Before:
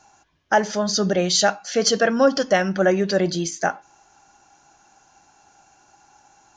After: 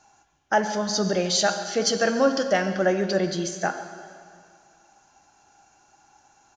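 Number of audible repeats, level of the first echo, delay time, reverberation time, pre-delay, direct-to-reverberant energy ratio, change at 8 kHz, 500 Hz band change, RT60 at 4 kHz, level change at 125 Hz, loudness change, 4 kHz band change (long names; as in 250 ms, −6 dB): 1, −16.0 dB, 141 ms, 2.3 s, 9 ms, 8.0 dB, −3.5 dB, −3.5 dB, 2.1 s, −4.0 dB, −3.5 dB, −3.5 dB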